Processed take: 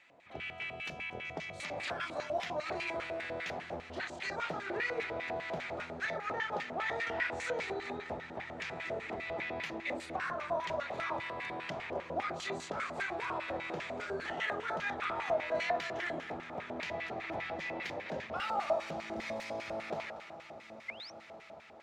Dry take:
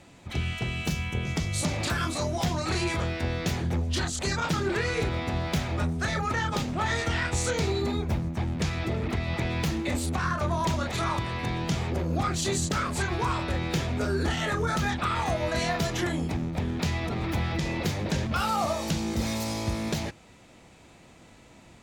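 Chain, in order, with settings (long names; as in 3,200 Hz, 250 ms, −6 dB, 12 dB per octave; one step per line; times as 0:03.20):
delay that swaps between a low-pass and a high-pass 118 ms, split 1,100 Hz, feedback 73%, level −10 dB
sound drawn into the spectrogram rise, 0:20.88–0:21.12, 2,000–6,200 Hz −35 dBFS
feedback delay with all-pass diffusion 1,488 ms, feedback 40%, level −13 dB
auto-filter band-pass square 5 Hz 650–2,100 Hz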